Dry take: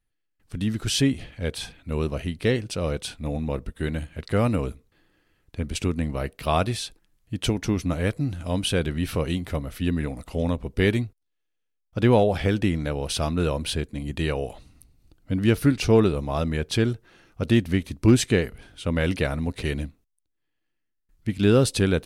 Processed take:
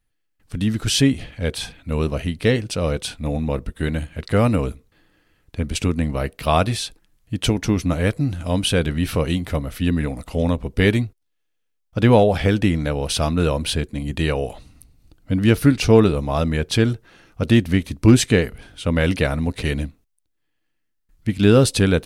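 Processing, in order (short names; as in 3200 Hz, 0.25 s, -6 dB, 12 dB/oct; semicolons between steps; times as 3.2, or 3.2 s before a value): notch 370 Hz, Q 12; gain +5 dB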